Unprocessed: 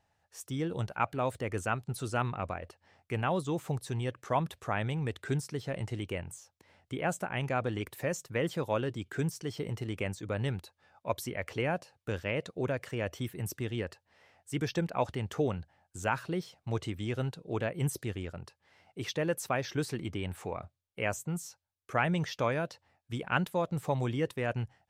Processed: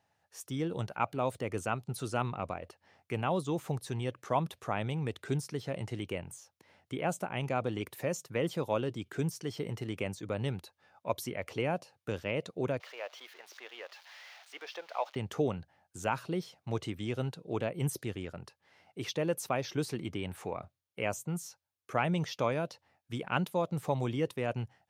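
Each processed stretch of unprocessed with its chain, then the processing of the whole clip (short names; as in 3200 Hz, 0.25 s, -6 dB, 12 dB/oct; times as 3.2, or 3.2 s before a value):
12.8–15.16 switching spikes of -31 dBFS + HPF 600 Hz 24 dB/oct + air absorption 240 m
whole clip: HPF 110 Hz; notch 7700 Hz, Q 13; dynamic EQ 1700 Hz, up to -7 dB, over -51 dBFS, Q 2.7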